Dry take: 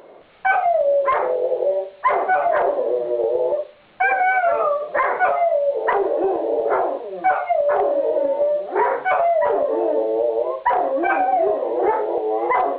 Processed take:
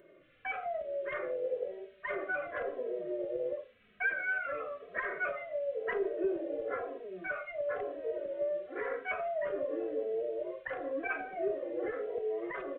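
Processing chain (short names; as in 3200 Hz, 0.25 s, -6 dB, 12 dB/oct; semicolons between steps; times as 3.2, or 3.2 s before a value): fixed phaser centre 2100 Hz, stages 4; endless flanger 2.8 ms -0.96 Hz; gain -7.5 dB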